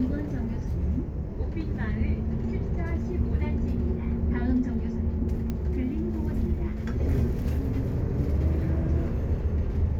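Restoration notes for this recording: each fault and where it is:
5.5 pop -19 dBFS

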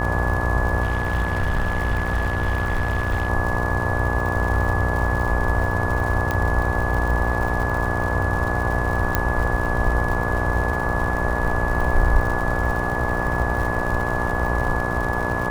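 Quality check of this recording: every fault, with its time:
buzz 60 Hz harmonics 20 -26 dBFS
crackle 130/s -28 dBFS
tone 1700 Hz -27 dBFS
0.82–3.3 clipped -17 dBFS
6.31 pop -10 dBFS
9.15 pop -4 dBFS

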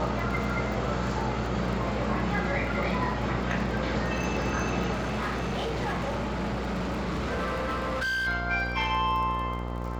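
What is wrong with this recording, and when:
buzz 60 Hz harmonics 23 -33 dBFS
crackle 25/s -35 dBFS
4.92–8.28 clipped -26.5 dBFS

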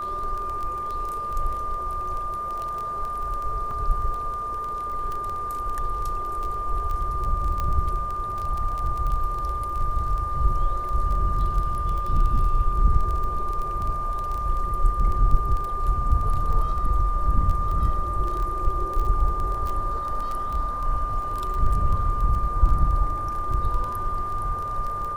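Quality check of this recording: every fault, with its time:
crackle 12/s -27 dBFS
tone 1200 Hz -27 dBFS
3.71 gap 3.1 ms
7.6 pop -15 dBFS

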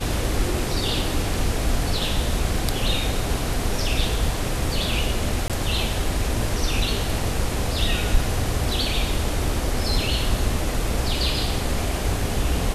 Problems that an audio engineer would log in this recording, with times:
5.48–5.5 gap 17 ms

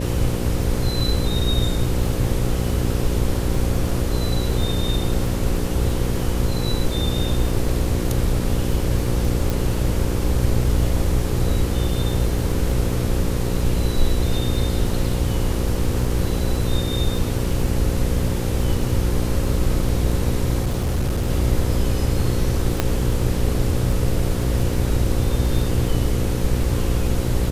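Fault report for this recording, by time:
buzz 60 Hz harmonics 9 -24 dBFS
crackle 14/s -26 dBFS
9.5 pop
20.62–21.3 clipped -17 dBFS
22.8 pop -4 dBFS

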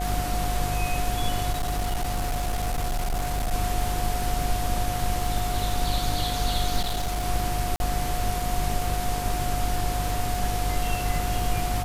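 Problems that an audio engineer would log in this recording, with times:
buzz 50 Hz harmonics 30 -30 dBFS
crackle 49/s -28 dBFS
tone 720 Hz -30 dBFS
1.51–3.54 clipped -22.5 dBFS
6.81–7.24 clipped -23 dBFS
7.76–7.8 gap 41 ms

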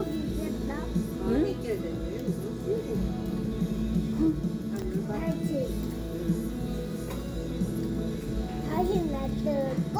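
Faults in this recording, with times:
4.82 gap 3.4 ms

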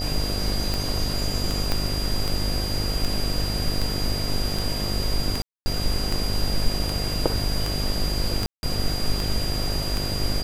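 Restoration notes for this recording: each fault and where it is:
buzz 50 Hz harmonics 15 -29 dBFS
tick 78 rpm
tone 4800 Hz -30 dBFS
1.72 pop -9 dBFS
5.42–5.66 gap 0.24 s
8.46–8.63 gap 0.171 s

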